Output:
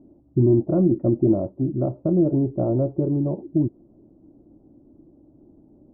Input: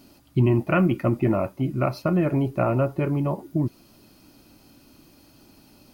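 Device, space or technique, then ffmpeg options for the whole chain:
under water: -af "lowpass=f=630:w=0.5412,lowpass=f=630:w=1.3066,equalizer=f=330:t=o:w=0.43:g=6.5"

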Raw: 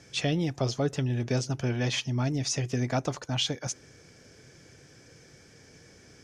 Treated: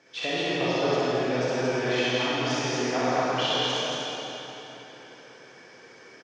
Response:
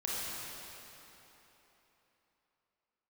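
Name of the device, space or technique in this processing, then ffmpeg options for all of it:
station announcement: -filter_complex "[0:a]highpass=360,lowpass=3700,equalizer=f=1000:t=o:w=0.32:g=5,aecho=1:1:64.14|227.4:0.794|0.794[s0];[1:a]atrim=start_sample=2205[s1];[s0][s1]afir=irnorm=-1:irlink=0"

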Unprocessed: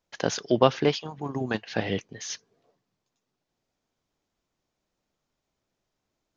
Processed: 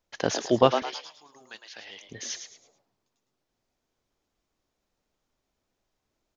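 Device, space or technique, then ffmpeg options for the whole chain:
low shelf boost with a cut just above: -filter_complex "[0:a]asettb=1/sr,asplit=3[s0][s1][s2];[s0]atrim=end=0.824[s3];[s1]atrim=start=0.82:end=2.02,asetpts=PTS-STARTPTS,afade=t=in:d=0.004:c=qsin,afade=t=out:st=1.196:d=0.004:c=qsin,aderivative[s4];[s2]atrim=start=2.016[s5];[s3][s4]acrossfade=d=0.004:c1=hsin:c2=qsin[s6];[s6][s5]acrossfade=d=0.004:c1=qsin:c2=hsin,asplit=5[s7][s8][s9][s10][s11];[s8]adelay=108,afreqshift=120,volume=0.398[s12];[s9]adelay=216,afreqshift=240,volume=0.127[s13];[s10]adelay=324,afreqshift=360,volume=0.0407[s14];[s11]adelay=432,afreqshift=480,volume=0.013[s15];[s7][s12][s13][s14][s15]amix=inputs=5:normalize=0,lowshelf=f=65:g=6,equalizer=f=150:t=o:w=0.58:g=-5"

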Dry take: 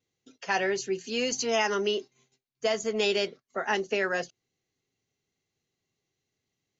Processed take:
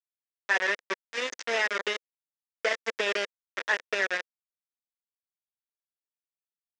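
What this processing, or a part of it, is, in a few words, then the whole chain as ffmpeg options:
hand-held game console: -af "acrusher=bits=3:mix=0:aa=0.000001,highpass=490,equalizer=f=500:t=q:w=4:g=4,equalizer=f=790:t=q:w=4:g=-8,equalizer=f=1200:t=q:w=4:g=-4,equalizer=f=1800:t=q:w=4:g=7,equalizer=f=3000:t=q:w=4:g=-5,equalizer=f=4300:t=q:w=4:g=-10,lowpass=f=5100:w=0.5412,lowpass=f=5100:w=1.3066"

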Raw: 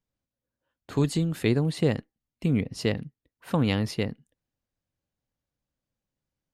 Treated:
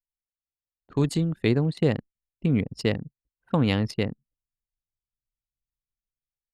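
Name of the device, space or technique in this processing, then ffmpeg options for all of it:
voice memo with heavy noise removal: -af "anlmdn=3.98,dynaudnorm=f=210:g=7:m=2.99,volume=0.473"

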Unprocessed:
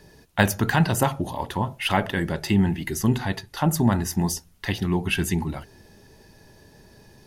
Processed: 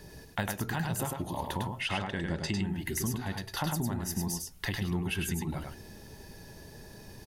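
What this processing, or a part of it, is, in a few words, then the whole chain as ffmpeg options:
ASMR close-microphone chain: -filter_complex "[0:a]lowshelf=f=140:g=3.5,acompressor=threshold=0.0251:ratio=5,highshelf=f=8300:g=6,asettb=1/sr,asplit=3[s0][s1][s2];[s0]atrim=end=1.814[s3];[s1]atrim=start=1.81:end=2.63,asetpts=PTS-STARTPTS,afade=t=in:d=0.004:c=qsin,afade=t=out:st=0.816:d=0.004:c=qsin,lowpass=f=8200:w=0.5412,lowpass=f=8200:w=1.3066[s4];[s2]atrim=start=2.626[s5];[s3][s4]acrossfade=d=0.004:c1=hsin:c2=qsin[s6];[s6][s5]acrossfade=d=0.004:c1=qsin:c2=hsin,aecho=1:1:102:0.631"

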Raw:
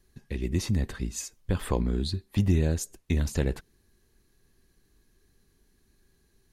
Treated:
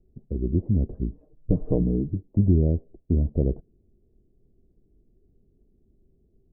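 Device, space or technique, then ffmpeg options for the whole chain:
under water: -filter_complex "[0:a]asettb=1/sr,asplit=3[s0][s1][s2];[s0]atrim=end=1.114[s3];[s1]atrim=start=1.11:end=2.29,asetpts=PTS-STARTPTS,afade=t=in:d=0.004:c=qsin,afade=t=out:st=1.176:d=0.004:c=qsin,aecho=1:1:6.6:0.96,atrim=end_sample=52038[s4];[s2]atrim=start=2.286[s5];[s3][s4]acrossfade=d=0.004:c1=hsin:c2=qsin[s6];[s6][s5]acrossfade=d=0.004:c1=qsin:c2=hsin,lowpass=f=450:w=0.5412,lowpass=f=450:w=1.3066,equalizer=f=670:t=o:w=0.5:g=10,volume=1.58"

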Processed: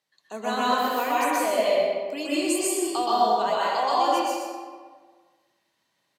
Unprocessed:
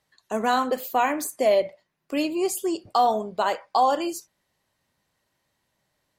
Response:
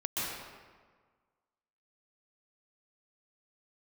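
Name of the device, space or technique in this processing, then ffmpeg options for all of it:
PA in a hall: -filter_complex "[0:a]highpass=190,equalizer=f=3900:t=o:w=1.9:g=5.5,aecho=1:1:125:0.422[s0];[1:a]atrim=start_sample=2205[s1];[s0][s1]afir=irnorm=-1:irlink=0,asettb=1/sr,asplit=3[s2][s3][s4];[s2]atrim=end=2.254[s5];[s3]atrim=start=2.25:end=3.06,asetpts=PTS-STARTPTS,afade=t=in:d=0.004:c=qsin,afade=t=out:st=0.806:d=0.004:c=qsin,equalizer=f=8300:t=o:w=0.27:g=14[s6];[s4]atrim=start=3.056[s7];[s5][s6]acrossfade=d=0.004:c1=hsin:c2=qsin[s8];[s8][s7]acrossfade=d=0.004:c1=qsin:c2=hsin,volume=0.447"

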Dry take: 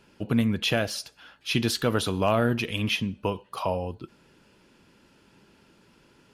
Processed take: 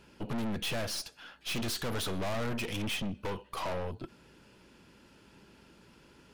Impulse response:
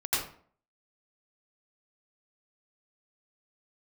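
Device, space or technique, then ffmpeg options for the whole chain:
valve amplifier with mains hum: -af "aeval=exprs='(tanh(56.2*val(0)+0.55)-tanh(0.55))/56.2':c=same,aeval=exprs='val(0)+0.000251*(sin(2*PI*60*n/s)+sin(2*PI*2*60*n/s)/2+sin(2*PI*3*60*n/s)/3+sin(2*PI*4*60*n/s)/4+sin(2*PI*5*60*n/s)/5)':c=same,volume=1.33"

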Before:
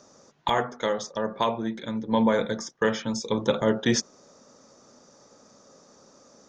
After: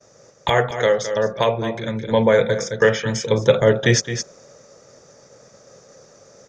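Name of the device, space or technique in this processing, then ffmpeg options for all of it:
ducked delay: -filter_complex "[0:a]agate=range=0.0224:threshold=0.00282:ratio=3:detection=peak,equalizer=f=125:t=o:w=1:g=8,equalizer=f=250:t=o:w=1:g=-12,equalizer=f=500:t=o:w=1:g=6,equalizer=f=1000:t=o:w=1:g=-8,equalizer=f=2000:t=o:w=1:g=5,equalizer=f=4000:t=o:w=1:g=-4,asplit=3[s0][s1][s2];[s1]adelay=215,volume=0.75[s3];[s2]apad=whole_len=295677[s4];[s3][s4]sidechaincompress=threshold=0.0178:ratio=8:attack=11:release=312[s5];[s0][s5]amix=inputs=2:normalize=0,volume=2.51"

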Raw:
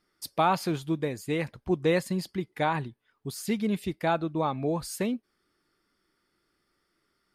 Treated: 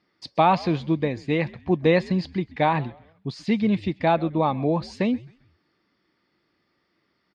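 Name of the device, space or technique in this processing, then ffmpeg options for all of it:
frequency-shifting delay pedal into a guitar cabinet: -filter_complex "[0:a]asplit=4[s0][s1][s2][s3];[s1]adelay=132,afreqshift=-110,volume=0.0891[s4];[s2]adelay=264,afreqshift=-220,volume=0.0339[s5];[s3]adelay=396,afreqshift=-330,volume=0.0129[s6];[s0][s4][s5][s6]amix=inputs=4:normalize=0,highpass=91,equalizer=f=400:t=q:w=4:g=-5,equalizer=f=1400:t=q:w=4:g=-9,equalizer=f=3300:t=q:w=4:g=-4,lowpass=f=4400:w=0.5412,lowpass=f=4400:w=1.3066,volume=2.24"

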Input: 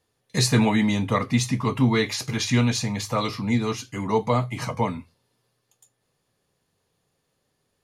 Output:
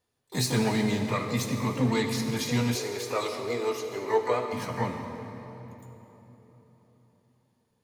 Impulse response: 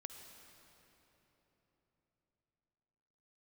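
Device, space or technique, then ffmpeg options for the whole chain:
shimmer-style reverb: -filter_complex "[0:a]asplit=2[s0][s1];[s1]asetrate=88200,aresample=44100,atempo=0.5,volume=0.398[s2];[s0][s2]amix=inputs=2:normalize=0[s3];[1:a]atrim=start_sample=2205[s4];[s3][s4]afir=irnorm=-1:irlink=0,asettb=1/sr,asplit=3[s5][s6][s7];[s5]atrim=end=2.754[s8];[s6]atrim=start=2.75:end=4.53,asetpts=PTS-STARTPTS,afade=t=in:d=0.004:c=qsin,afade=t=out:st=1.776:d=0.004:c=qsin,lowshelf=f=280:t=q:w=3:g=-10[s9];[s7]atrim=start=4.526[s10];[s8][s9]acrossfade=d=0.004:c1=hsin:c2=qsin[s11];[s11][s10]acrossfade=d=0.004:c1=qsin:c2=hsin,volume=0.841"

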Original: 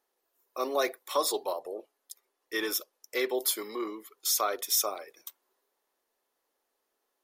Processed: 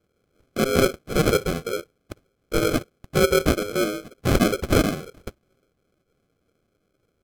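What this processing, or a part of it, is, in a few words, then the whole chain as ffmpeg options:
crushed at another speed: -af "aecho=1:1:2.5:0.74,asetrate=55125,aresample=44100,acrusher=samples=38:mix=1:aa=0.000001,asetrate=35280,aresample=44100,volume=2.37"

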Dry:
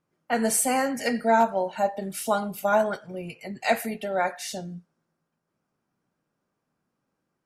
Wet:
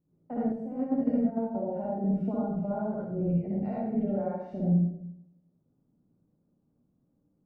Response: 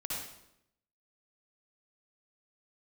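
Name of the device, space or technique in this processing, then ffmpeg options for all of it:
television next door: -filter_complex "[0:a]acompressor=threshold=0.0355:ratio=4,lowpass=330[s0];[1:a]atrim=start_sample=2205[s1];[s0][s1]afir=irnorm=-1:irlink=0,asettb=1/sr,asplit=3[s2][s3][s4];[s2]atrim=end=0.524[s5];[s3]atrim=start=0.52:end=1.55,asetpts=PTS-STARTPTS,afade=t=in:d=0.004:c=qsin,afade=t=out:st=1.026:d=0.004:c=qsin,agate=range=0.447:threshold=0.0224:ratio=16:detection=peak[s6];[s4]atrim=start=1.546[s7];[s5][s6]acrossfade=d=0.004:c1=hsin:c2=qsin[s8];[s8][s7]acrossfade=d=0.004:c1=qsin:c2=hsin,volume=2.37"

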